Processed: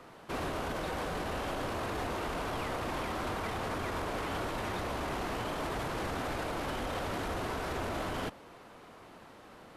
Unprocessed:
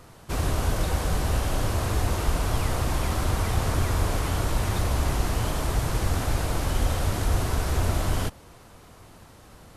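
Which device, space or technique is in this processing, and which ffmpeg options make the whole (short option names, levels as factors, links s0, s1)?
DJ mixer with the lows and highs turned down: -filter_complex "[0:a]acrossover=split=190 3800:gain=0.158 1 0.251[s0][s1][s2];[s0][s1][s2]amix=inputs=3:normalize=0,alimiter=level_in=1.5:limit=0.0631:level=0:latency=1:release=16,volume=0.668"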